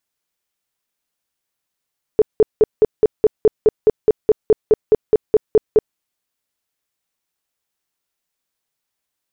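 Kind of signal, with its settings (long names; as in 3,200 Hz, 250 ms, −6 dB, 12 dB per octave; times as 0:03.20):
tone bursts 431 Hz, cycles 12, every 0.21 s, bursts 18, −6.5 dBFS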